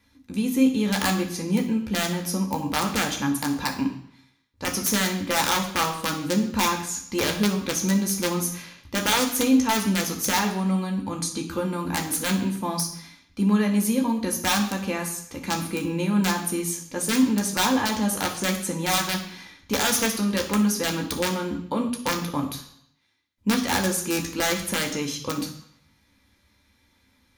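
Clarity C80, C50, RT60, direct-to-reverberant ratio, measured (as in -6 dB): 12.0 dB, 9.0 dB, 0.65 s, 1.0 dB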